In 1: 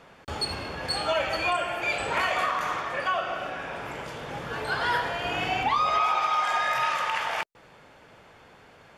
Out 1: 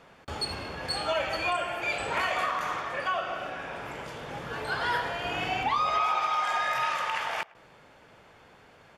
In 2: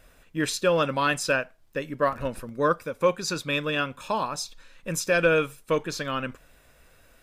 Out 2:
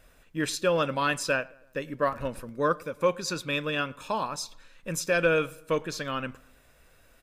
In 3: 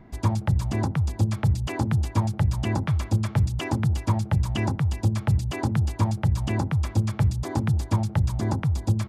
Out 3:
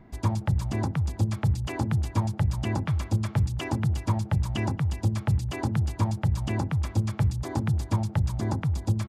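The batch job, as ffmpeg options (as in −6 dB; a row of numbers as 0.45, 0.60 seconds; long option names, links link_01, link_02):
-filter_complex "[0:a]asplit=2[link_01][link_02];[link_02]adelay=108,lowpass=frequency=2500:poles=1,volume=-23dB,asplit=2[link_03][link_04];[link_04]adelay=108,lowpass=frequency=2500:poles=1,volume=0.52,asplit=2[link_05][link_06];[link_06]adelay=108,lowpass=frequency=2500:poles=1,volume=0.52[link_07];[link_01][link_03][link_05][link_07]amix=inputs=4:normalize=0,volume=-2.5dB"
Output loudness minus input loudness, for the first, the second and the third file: −2.5, −2.5, −2.5 LU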